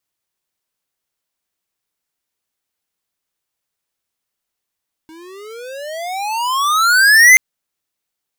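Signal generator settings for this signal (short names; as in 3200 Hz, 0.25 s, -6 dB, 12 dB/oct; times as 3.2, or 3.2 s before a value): gliding synth tone square, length 2.28 s, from 313 Hz, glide +33 st, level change +33.5 dB, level -5 dB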